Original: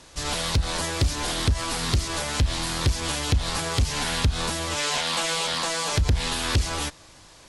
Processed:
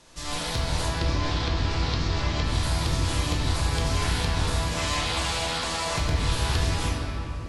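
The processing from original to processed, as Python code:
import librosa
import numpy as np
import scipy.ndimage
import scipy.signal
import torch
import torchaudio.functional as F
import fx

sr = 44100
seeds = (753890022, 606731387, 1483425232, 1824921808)

y = fx.lowpass(x, sr, hz=5700.0, slope=24, at=(0.88, 2.44))
y = fx.room_shoebox(y, sr, seeds[0], volume_m3=210.0, walls='hard', distance_m=0.8)
y = F.gain(torch.from_numpy(y), -7.0).numpy()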